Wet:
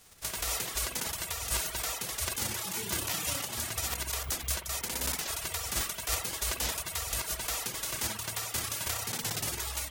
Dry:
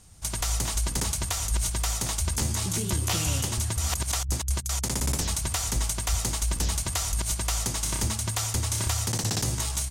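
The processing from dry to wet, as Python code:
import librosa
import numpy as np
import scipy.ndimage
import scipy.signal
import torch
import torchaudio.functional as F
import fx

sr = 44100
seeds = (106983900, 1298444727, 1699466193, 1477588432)

y = fx.envelope_flatten(x, sr, power=0.3)
y = fx.rev_spring(y, sr, rt60_s=1.2, pass_ms=(47,), chirp_ms=70, drr_db=2.5)
y = fx.dereverb_blind(y, sr, rt60_s=1.2)
y = y * 10.0 ** (-5.0 / 20.0)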